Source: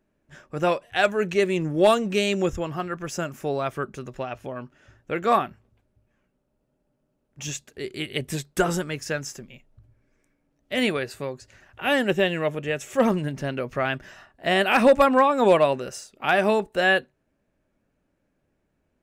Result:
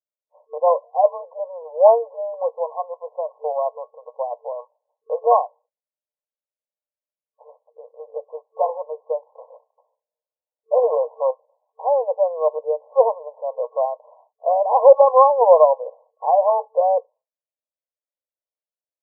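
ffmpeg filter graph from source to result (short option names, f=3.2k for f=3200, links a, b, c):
-filter_complex "[0:a]asettb=1/sr,asplit=3[a][b][c];[a]atrim=end=9.374[d];[b]atrim=start=9.37:end=11.31,asetpts=PTS-STARTPTS,afade=t=in:d=0.004:c=qsin,afade=t=out:st=1.936:d=0.004:c=qsin,bandreject=f=50:t=h:w=6,bandreject=f=100:t=h:w=6,acontrast=54,acrusher=bits=2:mode=log:mix=0:aa=0.000001[e];[c]atrim=start=11.306[f];[d][e]acrossfade=d=0.004:c1=hsin:c2=qsin[g];[g][f]acrossfade=d=0.004:c1=qsin:c2=hsin,agate=range=-33dB:threshold=-42dB:ratio=3:detection=peak,afftfilt=real='re*between(b*sr/4096,450,1100)':imag='im*between(b*sr/4096,450,1100)':win_size=4096:overlap=0.75,volume=7dB"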